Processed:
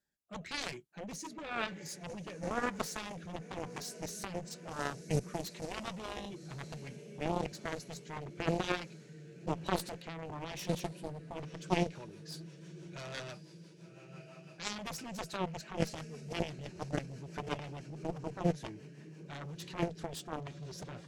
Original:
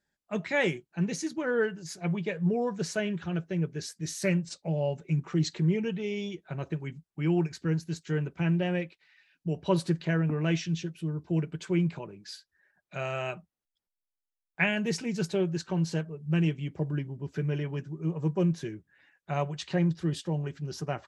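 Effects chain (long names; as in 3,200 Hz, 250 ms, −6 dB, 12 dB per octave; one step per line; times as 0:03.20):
brickwall limiter −23.5 dBFS, peak gain reduction 11.5 dB
feedback delay with all-pass diffusion 1,117 ms, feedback 59%, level −13 dB
rotating-speaker cabinet horn 1 Hz, later 6 Hz, at 0:11.16
harmonic generator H 3 −7 dB, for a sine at −21.5 dBFS
high-shelf EQ 7,600 Hz +9 dB
level +5.5 dB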